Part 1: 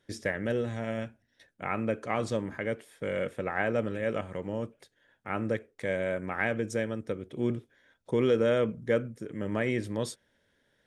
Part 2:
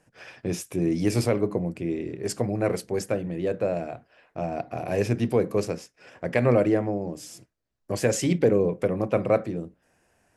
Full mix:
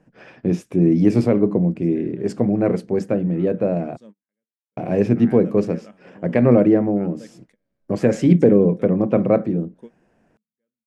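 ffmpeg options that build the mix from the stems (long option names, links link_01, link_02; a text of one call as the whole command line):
ffmpeg -i stem1.wav -i stem2.wav -filter_complex "[0:a]equalizer=frequency=210:width_type=o:width=0.27:gain=8.5,adelay=1700,volume=-14dB,afade=type=in:start_time=3.93:duration=0.35:silence=0.375837[link_01];[1:a]aemphasis=mode=reproduction:type=riaa,volume=1.5dB,asplit=3[link_02][link_03][link_04];[link_02]atrim=end=3.97,asetpts=PTS-STARTPTS,afade=type=out:start_time=3.966:duration=0.004:curve=hsin[link_05];[link_03]atrim=start=3.97:end=4.77,asetpts=PTS-STARTPTS,volume=0[link_06];[link_04]atrim=start=4.77,asetpts=PTS-STARTPTS,afade=type=in:duration=0.004:curve=hsin[link_07];[link_05][link_06][link_07]concat=n=3:v=0:a=1,asplit=2[link_08][link_09];[link_09]apad=whole_len=554127[link_10];[link_01][link_10]sidechaingate=range=-43dB:threshold=-49dB:ratio=16:detection=peak[link_11];[link_11][link_08]amix=inputs=2:normalize=0,lowshelf=frequency=130:width_type=q:width=1.5:gain=-13.5" out.wav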